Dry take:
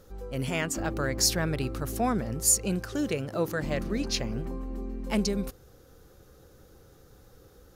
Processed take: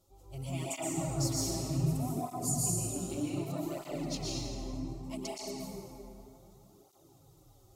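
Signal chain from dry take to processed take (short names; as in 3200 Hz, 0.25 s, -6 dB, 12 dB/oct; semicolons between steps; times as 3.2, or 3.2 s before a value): 0.91–2.98 low shelf 430 Hz +10.5 dB; compressor 3:1, threshold -25 dBFS, peak gain reduction 7.5 dB; bell 7900 Hz +6.5 dB 0.34 oct; fixed phaser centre 320 Hz, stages 8; plate-style reverb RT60 2.9 s, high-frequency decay 0.5×, pre-delay 0.105 s, DRR -7 dB; tape flanging out of phase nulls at 0.65 Hz, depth 7.1 ms; gain -7 dB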